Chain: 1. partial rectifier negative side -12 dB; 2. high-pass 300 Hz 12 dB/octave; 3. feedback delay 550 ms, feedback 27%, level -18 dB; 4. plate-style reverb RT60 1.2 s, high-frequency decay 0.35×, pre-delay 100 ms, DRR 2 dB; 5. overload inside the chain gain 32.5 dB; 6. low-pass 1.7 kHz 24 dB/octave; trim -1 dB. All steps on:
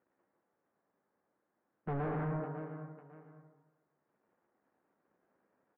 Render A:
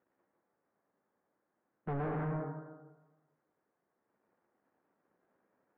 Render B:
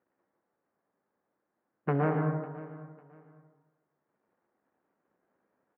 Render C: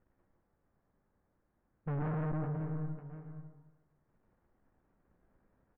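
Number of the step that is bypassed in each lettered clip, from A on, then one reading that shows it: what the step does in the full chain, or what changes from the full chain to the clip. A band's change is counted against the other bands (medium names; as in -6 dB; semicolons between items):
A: 3, momentary loudness spread change -3 LU; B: 5, distortion -5 dB; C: 2, 125 Hz band +7.0 dB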